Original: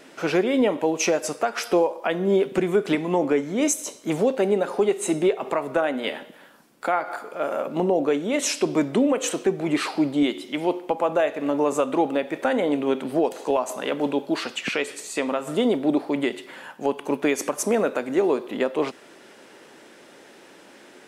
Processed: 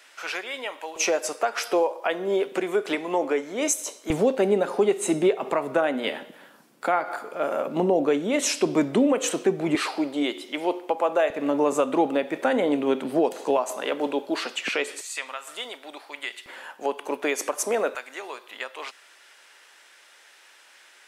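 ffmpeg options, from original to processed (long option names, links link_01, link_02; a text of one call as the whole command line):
ffmpeg -i in.wav -af "asetnsamples=nb_out_samples=441:pad=0,asendcmd='0.96 highpass f 420;4.1 highpass f 110;9.75 highpass f 360;11.3 highpass f 150;13.58 highpass f 330;15.01 highpass f 1400;16.46 highpass f 450;17.95 highpass f 1300',highpass=1200" out.wav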